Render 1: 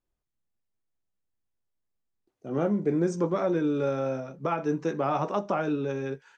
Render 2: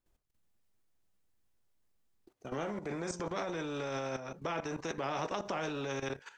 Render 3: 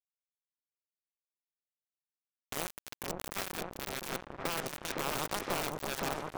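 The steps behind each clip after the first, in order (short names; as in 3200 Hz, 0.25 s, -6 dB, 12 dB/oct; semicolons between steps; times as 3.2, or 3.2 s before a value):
dynamic EQ 590 Hz, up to +7 dB, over -40 dBFS, Q 0.76; level quantiser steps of 14 dB; spectral compressor 2:1; gain -4.5 dB
modulation noise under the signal 13 dB; bit-crush 5-bit; repeats that get brighter 0.513 s, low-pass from 750 Hz, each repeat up 1 oct, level 0 dB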